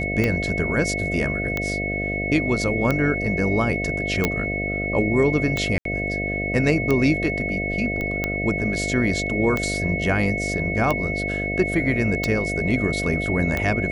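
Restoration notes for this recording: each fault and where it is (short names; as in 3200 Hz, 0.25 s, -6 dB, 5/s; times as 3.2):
buzz 50 Hz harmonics 14 -28 dBFS
tick 45 rpm -9 dBFS
tone 2200 Hz -26 dBFS
4.25 pop -5 dBFS
5.78–5.85 gap 73 ms
8.01 pop -16 dBFS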